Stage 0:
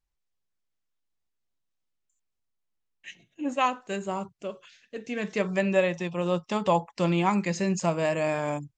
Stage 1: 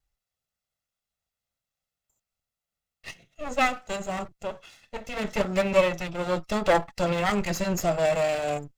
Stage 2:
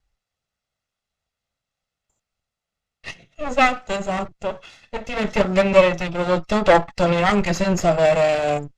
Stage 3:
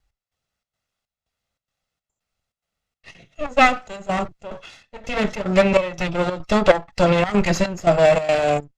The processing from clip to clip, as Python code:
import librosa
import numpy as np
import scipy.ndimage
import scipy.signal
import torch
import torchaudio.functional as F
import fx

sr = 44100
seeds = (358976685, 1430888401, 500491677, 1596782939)

y1 = fx.lower_of_two(x, sr, delay_ms=1.5)
y1 = y1 * librosa.db_to_amplitude(4.5)
y2 = fx.air_absorb(y1, sr, metres=65.0)
y2 = y2 * librosa.db_to_amplitude(7.5)
y3 = fx.step_gate(y2, sr, bpm=143, pattern='x..xxx.xx', floor_db=-12.0, edge_ms=4.5)
y3 = y3 * librosa.db_to_amplitude(2.0)